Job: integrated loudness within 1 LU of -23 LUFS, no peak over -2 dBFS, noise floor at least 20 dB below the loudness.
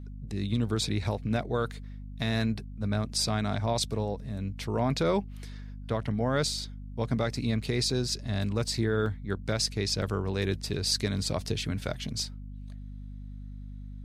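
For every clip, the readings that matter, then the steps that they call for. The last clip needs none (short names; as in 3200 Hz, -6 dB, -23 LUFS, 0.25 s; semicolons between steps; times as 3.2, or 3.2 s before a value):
dropouts 3; longest dropout 1.6 ms; hum 50 Hz; harmonics up to 250 Hz; hum level -38 dBFS; loudness -30.0 LUFS; peak -13.5 dBFS; loudness target -23.0 LUFS
-> interpolate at 7.9/9.06/10.02, 1.6 ms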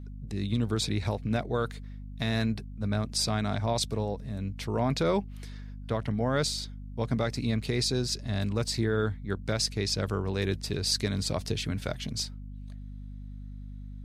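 dropouts 0; hum 50 Hz; harmonics up to 250 Hz; hum level -38 dBFS
-> notches 50/100/150/200/250 Hz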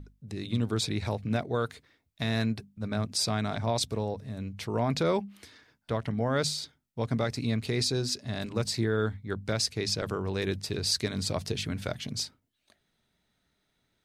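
hum none; loudness -31.0 LUFS; peak -13.5 dBFS; loudness target -23.0 LUFS
-> gain +8 dB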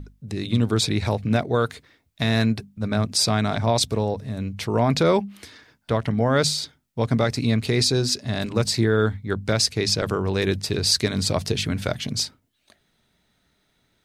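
loudness -23.0 LUFS; peak -6.0 dBFS; noise floor -69 dBFS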